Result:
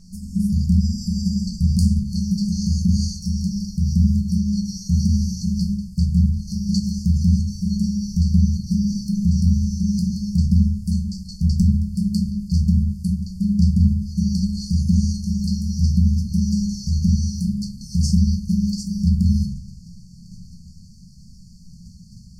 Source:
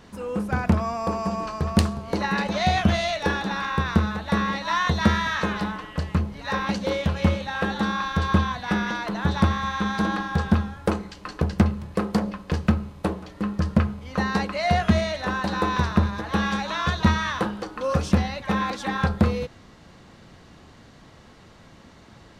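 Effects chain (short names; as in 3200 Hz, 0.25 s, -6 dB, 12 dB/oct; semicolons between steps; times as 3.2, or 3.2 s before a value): rattling part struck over -19 dBFS, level -24 dBFS; de-hum 94.1 Hz, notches 40; in parallel at +2 dB: level quantiser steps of 16 dB; on the sum: limiter -12 dBFS, peak gain reduction 10 dB; brick-wall FIR band-stop 220–4300 Hz; reverb RT60 0.40 s, pre-delay 4 ms, DRR 1 dB; gain +2.5 dB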